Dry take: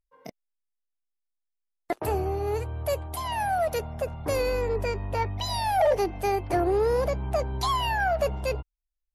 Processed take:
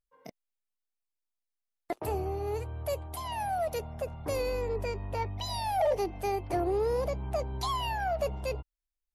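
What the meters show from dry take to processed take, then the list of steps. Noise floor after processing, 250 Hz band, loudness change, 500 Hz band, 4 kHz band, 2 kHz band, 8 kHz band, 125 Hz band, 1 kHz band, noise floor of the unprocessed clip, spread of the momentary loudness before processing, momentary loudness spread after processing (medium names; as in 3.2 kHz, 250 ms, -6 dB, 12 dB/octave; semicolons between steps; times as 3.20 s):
under -85 dBFS, -5.0 dB, -5.5 dB, -5.0 dB, -5.5 dB, -9.0 dB, -5.0 dB, -5.0 dB, -5.5 dB, -83 dBFS, 8 LU, 8 LU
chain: dynamic bell 1.6 kHz, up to -6 dB, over -46 dBFS, Q 2.6; trim -5 dB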